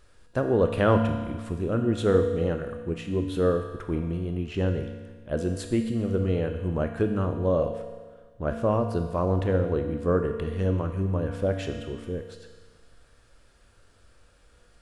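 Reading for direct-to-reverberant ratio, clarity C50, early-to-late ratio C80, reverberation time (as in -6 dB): 5.0 dB, 6.5 dB, 8.0 dB, 1.5 s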